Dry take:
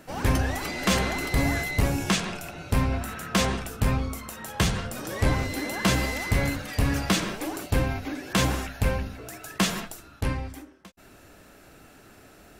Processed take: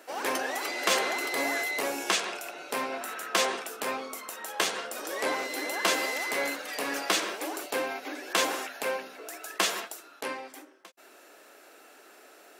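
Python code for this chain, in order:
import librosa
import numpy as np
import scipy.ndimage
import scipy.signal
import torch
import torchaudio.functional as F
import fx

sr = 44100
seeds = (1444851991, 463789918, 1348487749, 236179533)

y = scipy.signal.sosfilt(scipy.signal.butter(4, 360.0, 'highpass', fs=sr, output='sos'), x)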